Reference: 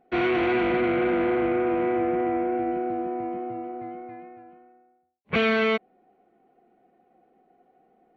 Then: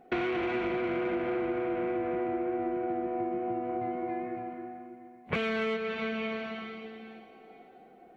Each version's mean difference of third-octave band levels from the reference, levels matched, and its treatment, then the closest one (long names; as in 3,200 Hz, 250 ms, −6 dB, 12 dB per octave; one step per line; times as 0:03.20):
5.0 dB: dense smooth reverb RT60 2.7 s, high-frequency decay 1×, pre-delay 115 ms, DRR 7 dB
in parallel at −9 dB: soft clipping −24 dBFS, distortion −12 dB
on the sum: downward compressor 10 to 1, threshold −33 dBFS, peak gain reduction 16 dB
level +4 dB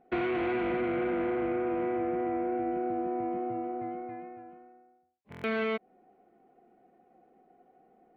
2.0 dB: high-shelf EQ 4,200 Hz −11 dB
downward compressor, threshold −28 dBFS, peak gain reduction 8 dB
buffer that repeats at 0:05.30, samples 1,024, times 5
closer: second